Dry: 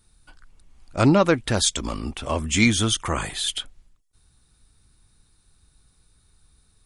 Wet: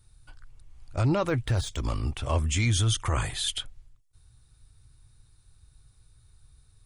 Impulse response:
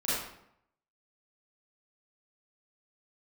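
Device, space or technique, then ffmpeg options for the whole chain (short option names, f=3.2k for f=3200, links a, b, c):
car stereo with a boomy subwoofer: -filter_complex "[0:a]asettb=1/sr,asplit=3[a][b][c];[a]atrim=end=1.224[d];[b]atrim=start=1.22:end=2.48,asetpts=PTS-STARTPTS,afade=t=in:d=0.004:c=qsin,afade=t=out:st=1.256:d=0.004:c=qsin,deesser=0.7[e];[c]atrim=start=2.476[f];[d][e]acrossfade=d=0.004:c1=hsin:c2=qsin[g];[g][f]acrossfade=d=0.004:c1=qsin:c2=hsin,lowshelf=f=150:t=q:w=3:g=6,alimiter=limit=-13dB:level=0:latency=1:release=18,volume=-3.5dB"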